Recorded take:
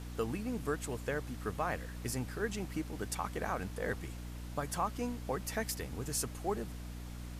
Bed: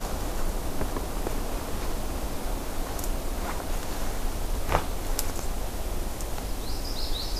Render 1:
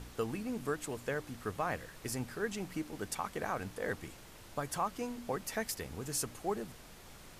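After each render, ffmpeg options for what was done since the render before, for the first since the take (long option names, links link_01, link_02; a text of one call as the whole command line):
ffmpeg -i in.wav -af "bandreject=frequency=60:width_type=h:width=4,bandreject=frequency=120:width_type=h:width=4,bandreject=frequency=180:width_type=h:width=4,bandreject=frequency=240:width_type=h:width=4,bandreject=frequency=300:width_type=h:width=4" out.wav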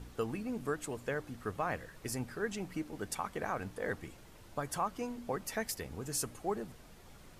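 ffmpeg -i in.wav -af "afftdn=noise_reduction=6:noise_floor=-54" out.wav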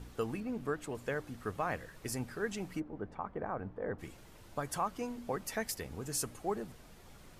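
ffmpeg -i in.wav -filter_complex "[0:a]asettb=1/sr,asplit=3[link_01][link_02][link_03];[link_01]atrim=end=0.404[link_04];[link_02]atrim=start=0.4:end=0.95,asetpts=PTS-STARTPTS,afade=type=in:duration=0.004:curve=qsin,afade=type=out:start_time=0.546:duration=0.004:curve=qsin,equalizer=frequency=10000:width=0.46:gain=-7.5[link_05];[link_03]atrim=start=0.946[link_06];[link_04][link_05]acrossfade=duration=0.004:curve1=hsin:curve2=qsin[link_07];[link_07][link_06]acrossfade=duration=0.004:curve1=qsin:curve2=hsin,asplit=3[link_08][link_09][link_10];[link_08]afade=type=out:start_time=2.79:duration=0.02[link_11];[link_09]lowpass=1100,afade=type=in:start_time=2.79:duration=0.02,afade=type=out:start_time=3.98:duration=0.02[link_12];[link_10]afade=type=in:start_time=3.98:duration=0.02[link_13];[link_11][link_12][link_13]amix=inputs=3:normalize=0" out.wav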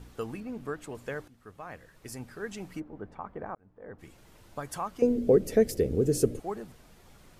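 ffmpeg -i in.wav -filter_complex "[0:a]asettb=1/sr,asplit=3[link_01][link_02][link_03];[link_01]atrim=end=5.024[link_04];[link_02]atrim=start=5.02:end=6.4,asetpts=PTS-STARTPTS,afade=type=in:duration=0.004:curve=qsin,afade=type=out:start_time=1.376:duration=0.004:curve=qsin,lowshelf=frequency=650:width_type=q:width=3:gain=13[link_05];[link_03]atrim=start=6.396[link_06];[link_04][link_05]acrossfade=duration=0.004:curve1=hsin:curve2=qsin[link_07];[link_07][link_06]acrossfade=duration=0.004:curve1=qsin:curve2=hsin,asplit=3[link_08][link_09][link_10];[link_08]atrim=end=1.28,asetpts=PTS-STARTPTS,afade=type=out:start_time=1.276:duration=0.004:curve=hsin:silence=0.177828[link_11];[link_09]atrim=start=1.28:end=3.55,asetpts=PTS-STARTPTS,afade=type=in:duration=1.39:silence=0.177828,afade=type=out:start_time=2.266:duration=0.004:curve=hsin[link_12];[link_10]atrim=start=3.55,asetpts=PTS-STARTPTS,afade=type=in:duration=0.76[link_13];[link_11][link_12][link_13]concat=n=3:v=0:a=1" out.wav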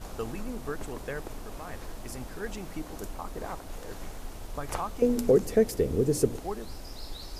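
ffmpeg -i in.wav -i bed.wav -filter_complex "[1:a]volume=-10.5dB[link_01];[0:a][link_01]amix=inputs=2:normalize=0" out.wav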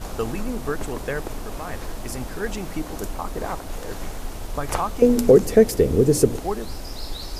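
ffmpeg -i in.wav -af "volume=8.5dB,alimiter=limit=-3dB:level=0:latency=1" out.wav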